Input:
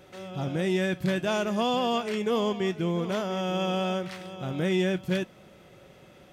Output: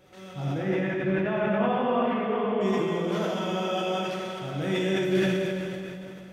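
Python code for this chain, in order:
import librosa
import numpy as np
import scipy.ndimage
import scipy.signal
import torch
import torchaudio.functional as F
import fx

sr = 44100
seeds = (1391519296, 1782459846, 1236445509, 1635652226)

y = fx.lowpass(x, sr, hz=2400.0, slope=24, at=(0.54, 2.61))
y = fx.rev_plate(y, sr, seeds[0], rt60_s=3.2, hf_ratio=0.85, predelay_ms=0, drr_db=-6.0)
y = fx.sustainer(y, sr, db_per_s=21.0)
y = y * 10.0 ** (-6.5 / 20.0)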